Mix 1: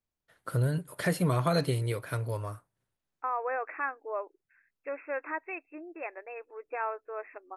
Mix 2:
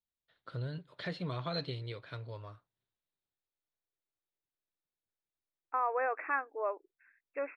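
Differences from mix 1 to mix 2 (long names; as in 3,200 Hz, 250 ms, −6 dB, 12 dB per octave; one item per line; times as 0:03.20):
first voice: add transistor ladder low-pass 4,200 Hz, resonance 65%
second voice: entry +2.50 s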